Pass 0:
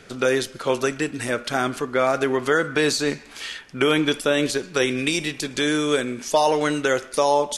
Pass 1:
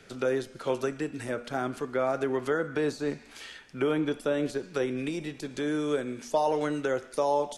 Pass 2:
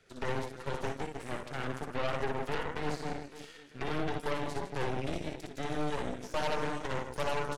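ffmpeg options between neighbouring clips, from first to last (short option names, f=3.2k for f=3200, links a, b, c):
-filter_complex "[0:a]equalizer=f=1.1k:w=6.4:g=-3,bandreject=f=240.2:t=h:w=4,bandreject=f=480.4:t=h:w=4,bandreject=f=720.6:t=h:w=4,bandreject=f=960.8:t=h:w=4,bandreject=f=1.201k:t=h:w=4,bandreject=f=1.4412k:t=h:w=4,bandreject=f=1.6814k:t=h:w=4,bandreject=f=1.9216k:t=h:w=4,bandreject=f=2.1618k:t=h:w=4,bandreject=f=2.402k:t=h:w=4,bandreject=f=2.6422k:t=h:w=4,bandreject=f=2.8824k:t=h:w=4,bandreject=f=3.1226k:t=h:w=4,bandreject=f=3.3628k:t=h:w=4,bandreject=f=3.603k:t=h:w=4,bandreject=f=3.8432k:t=h:w=4,bandreject=f=4.0834k:t=h:w=4,bandreject=f=4.3236k:t=h:w=4,bandreject=f=4.5638k:t=h:w=4,bandreject=f=4.804k:t=h:w=4,bandreject=f=5.0442k:t=h:w=4,bandreject=f=5.2844k:t=h:w=4,bandreject=f=5.5246k:t=h:w=4,bandreject=f=5.7648k:t=h:w=4,bandreject=f=6.005k:t=h:w=4,bandreject=f=6.2452k:t=h:w=4,bandreject=f=6.4854k:t=h:w=4,bandreject=f=6.7256k:t=h:w=4,bandreject=f=6.9658k:t=h:w=4,bandreject=f=7.206k:t=h:w=4,bandreject=f=7.4462k:t=h:w=4,bandreject=f=7.6864k:t=h:w=4,bandreject=f=7.9266k:t=h:w=4,bandreject=f=8.1668k:t=h:w=4,bandreject=f=8.407k:t=h:w=4,bandreject=f=8.6472k:t=h:w=4,acrossover=split=180|1400[a][b][c];[c]acompressor=threshold=-37dB:ratio=6[d];[a][b][d]amix=inputs=3:normalize=0,volume=-6.5dB"
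-af "flanger=delay=1.4:depth=7.6:regen=33:speed=0.92:shape=triangular,aecho=1:1:60|156|309.6|555.4|948.6:0.631|0.398|0.251|0.158|0.1,aeval=exprs='0.168*(cos(1*acos(clip(val(0)/0.168,-1,1)))-cos(1*PI/2))+0.0531*(cos(8*acos(clip(val(0)/0.168,-1,1)))-cos(8*PI/2))':c=same,volume=-8dB"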